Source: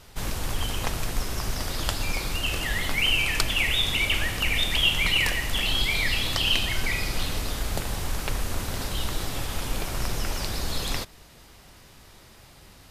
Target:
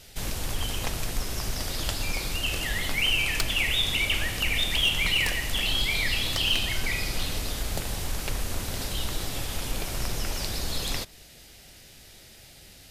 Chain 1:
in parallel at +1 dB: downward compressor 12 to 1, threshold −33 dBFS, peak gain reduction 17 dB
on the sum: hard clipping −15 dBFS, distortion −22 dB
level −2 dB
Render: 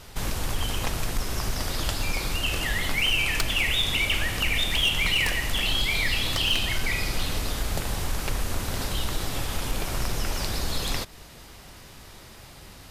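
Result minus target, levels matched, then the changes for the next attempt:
1,000 Hz band +2.5 dB
add after downward compressor: Bessel high-pass filter 1,200 Hz, order 6

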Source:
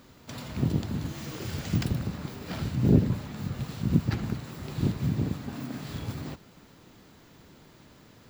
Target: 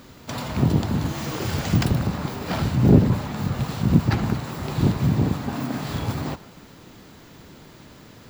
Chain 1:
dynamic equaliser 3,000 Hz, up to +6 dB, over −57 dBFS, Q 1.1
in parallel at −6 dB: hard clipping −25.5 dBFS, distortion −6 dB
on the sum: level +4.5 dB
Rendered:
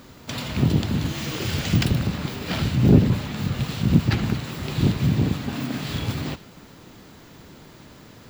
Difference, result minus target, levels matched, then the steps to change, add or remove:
4,000 Hz band +4.5 dB
change: dynamic equaliser 870 Hz, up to +6 dB, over −57 dBFS, Q 1.1

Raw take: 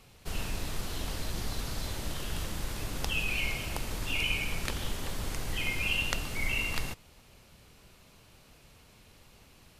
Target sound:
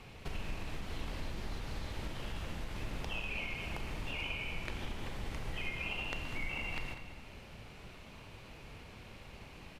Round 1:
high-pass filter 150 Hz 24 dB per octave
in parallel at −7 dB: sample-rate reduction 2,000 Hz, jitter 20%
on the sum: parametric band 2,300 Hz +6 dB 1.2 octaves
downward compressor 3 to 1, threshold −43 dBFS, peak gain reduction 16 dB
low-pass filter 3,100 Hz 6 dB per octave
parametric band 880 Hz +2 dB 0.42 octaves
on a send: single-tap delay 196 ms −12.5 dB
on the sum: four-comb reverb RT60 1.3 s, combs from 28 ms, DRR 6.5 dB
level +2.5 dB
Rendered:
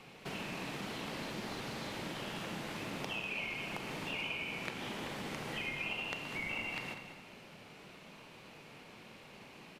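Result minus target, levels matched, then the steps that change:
125 Hz band −6.5 dB
remove: high-pass filter 150 Hz 24 dB per octave

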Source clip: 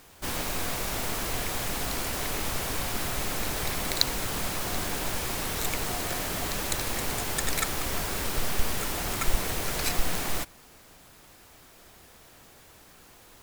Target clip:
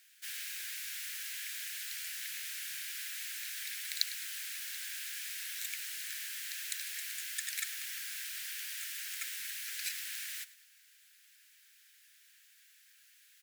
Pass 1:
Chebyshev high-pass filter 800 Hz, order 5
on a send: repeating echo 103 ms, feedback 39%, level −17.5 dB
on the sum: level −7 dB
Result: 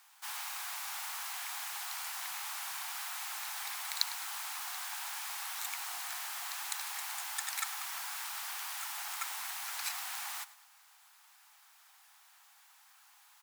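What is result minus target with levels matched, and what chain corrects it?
1,000 Hz band +19.5 dB
Chebyshev high-pass filter 1,600 Hz, order 5
on a send: repeating echo 103 ms, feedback 39%, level −17.5 dB
on the sum: level −7 dB

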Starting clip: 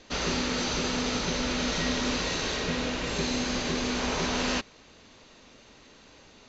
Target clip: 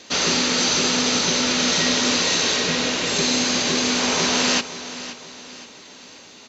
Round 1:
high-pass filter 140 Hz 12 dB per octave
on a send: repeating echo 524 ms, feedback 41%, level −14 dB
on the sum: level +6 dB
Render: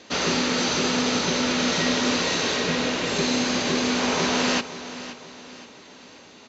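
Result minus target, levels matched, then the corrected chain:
8,000 Hz band −4.0 dB
high-pass filter 140 Hz 12 dB per octave
high-shelf EQ 3,400 Hz +10 dB
on a send: repeating echo 524 ms, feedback 41%, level −14 dB
on the sum: level +6 dB

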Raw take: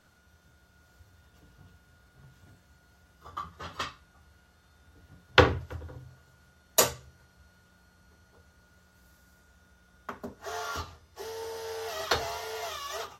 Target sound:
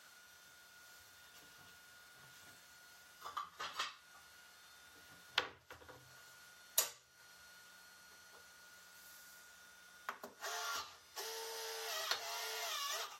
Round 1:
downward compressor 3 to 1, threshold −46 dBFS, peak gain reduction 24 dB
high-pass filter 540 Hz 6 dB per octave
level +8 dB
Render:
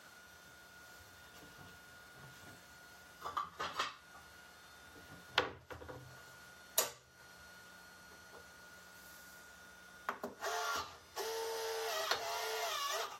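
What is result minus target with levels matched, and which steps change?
500 Hz band +6.5 dB
change: high-pass filter 2,000 Hz 6 dB per octave

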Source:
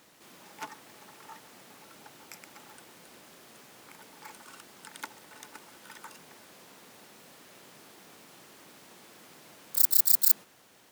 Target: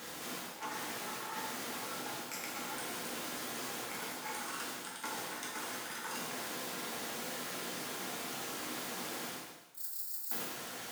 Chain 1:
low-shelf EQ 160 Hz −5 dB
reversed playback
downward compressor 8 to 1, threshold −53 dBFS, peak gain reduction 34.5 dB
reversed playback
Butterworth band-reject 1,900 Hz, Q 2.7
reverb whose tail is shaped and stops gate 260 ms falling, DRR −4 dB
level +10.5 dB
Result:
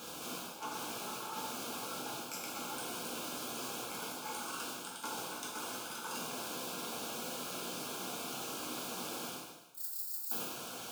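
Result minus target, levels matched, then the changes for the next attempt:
2,000 Hz band −3.5 dB
remove: Butterworth band-reject 1,900 Hz, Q 2.7

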